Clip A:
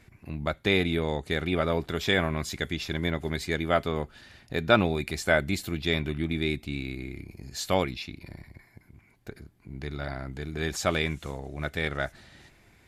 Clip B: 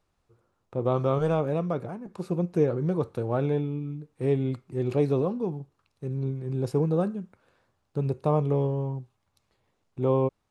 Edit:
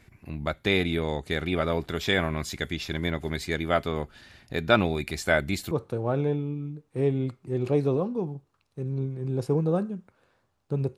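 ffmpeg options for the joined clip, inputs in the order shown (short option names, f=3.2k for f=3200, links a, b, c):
-filter_complex "[0:a]apad=whole_dur=10.97,atrim=end=10.97,atrim=end=5.712[a];[1:a]atrim=start=2.958:end=8.22[b];[a][b]acrossfade=d=0.004:c1=hsin:c2=hsin"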